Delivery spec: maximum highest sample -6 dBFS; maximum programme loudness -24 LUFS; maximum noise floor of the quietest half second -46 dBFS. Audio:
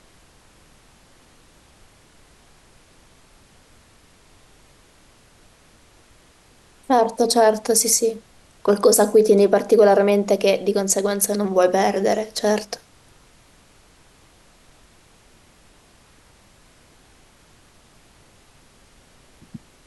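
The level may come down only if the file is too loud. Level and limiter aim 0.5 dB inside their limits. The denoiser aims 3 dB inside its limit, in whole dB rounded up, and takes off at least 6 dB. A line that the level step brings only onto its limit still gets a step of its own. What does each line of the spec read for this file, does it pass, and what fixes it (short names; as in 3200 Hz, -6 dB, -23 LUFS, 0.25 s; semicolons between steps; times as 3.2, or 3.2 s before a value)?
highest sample -5.0 dBFS: fail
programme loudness -18.0 LUFS: fail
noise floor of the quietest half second -53 dBFS: OK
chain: gain -6.5 dB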